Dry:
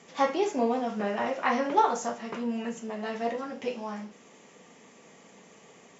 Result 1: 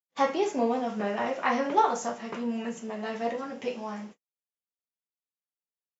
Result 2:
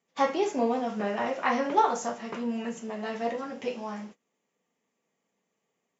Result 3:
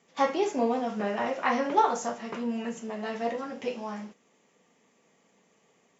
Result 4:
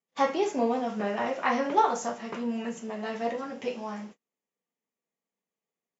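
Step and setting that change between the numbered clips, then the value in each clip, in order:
gate, range: -60, -26, -12, -39 dB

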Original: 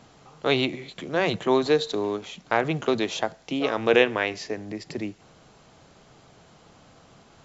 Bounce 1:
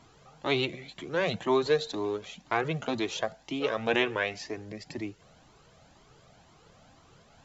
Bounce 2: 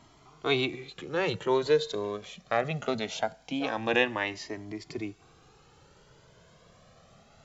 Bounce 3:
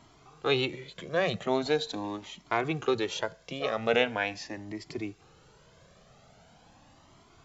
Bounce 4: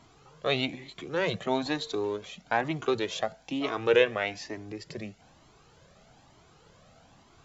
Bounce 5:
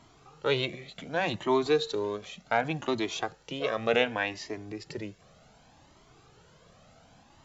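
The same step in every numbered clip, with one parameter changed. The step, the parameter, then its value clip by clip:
cascading flanger, rate: 2, 0.22, 0.42, 1.1, 0.67 Hz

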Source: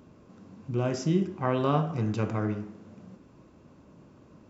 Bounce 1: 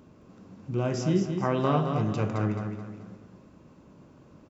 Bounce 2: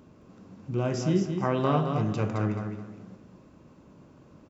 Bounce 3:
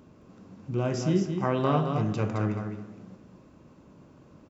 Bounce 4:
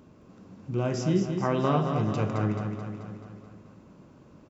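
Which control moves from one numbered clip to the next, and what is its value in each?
feedback echo, feedback: 38, 26, 17, 58%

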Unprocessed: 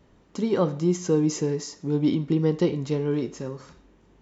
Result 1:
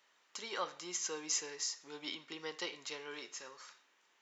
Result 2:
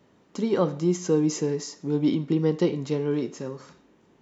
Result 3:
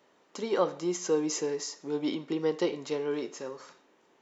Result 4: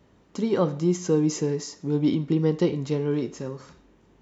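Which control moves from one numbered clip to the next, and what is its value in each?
HPF, cutoff: 1500, 140, 470, 50 Hz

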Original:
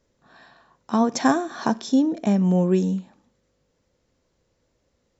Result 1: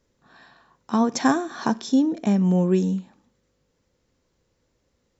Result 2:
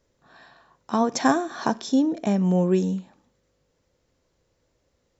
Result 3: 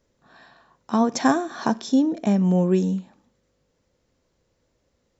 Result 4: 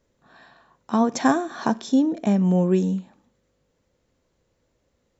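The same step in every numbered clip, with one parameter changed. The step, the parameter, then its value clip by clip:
bell, frequency: 630, 220, 14000, 5200 Hz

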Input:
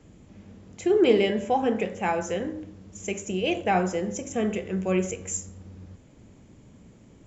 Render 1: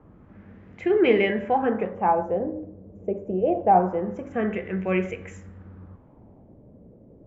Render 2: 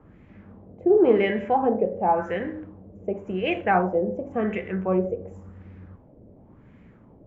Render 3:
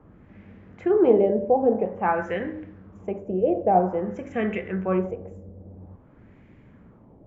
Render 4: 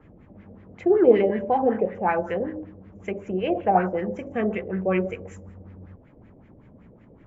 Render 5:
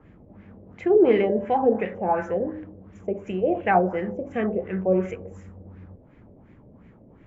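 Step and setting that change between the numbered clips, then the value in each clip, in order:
LFO low-pass, rate: 0.25, 0.92, 0.5, 5.3, 2.8 Hz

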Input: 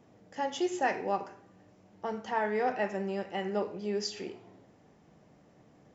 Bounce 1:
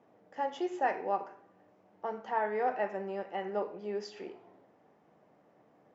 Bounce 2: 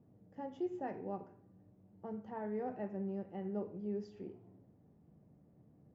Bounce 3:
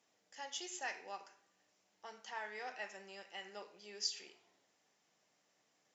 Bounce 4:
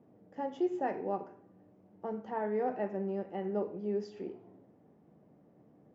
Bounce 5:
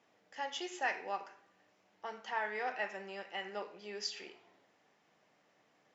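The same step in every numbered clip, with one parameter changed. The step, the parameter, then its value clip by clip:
band-pass, frequency: 810, 100, 6900, 280, 2700 Hz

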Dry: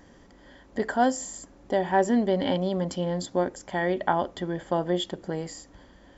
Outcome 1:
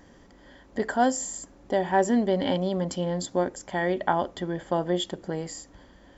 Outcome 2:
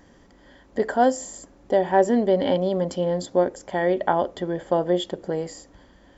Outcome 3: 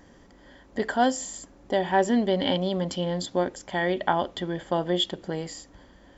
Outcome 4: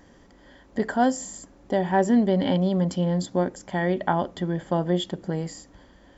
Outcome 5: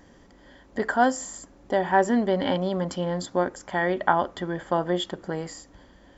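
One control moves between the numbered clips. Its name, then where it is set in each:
dynamic EQ, frequency: 9500, 500, 3300, 170, 1300 Hz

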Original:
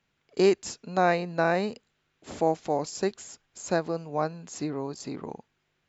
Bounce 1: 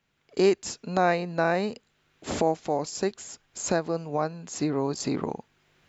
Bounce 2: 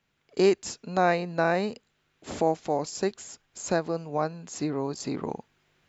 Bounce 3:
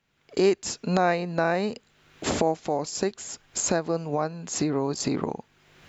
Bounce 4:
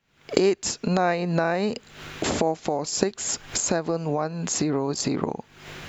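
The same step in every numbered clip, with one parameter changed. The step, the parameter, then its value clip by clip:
recorder AGC, rising by: 13, 5.2, 33, 83 dB/s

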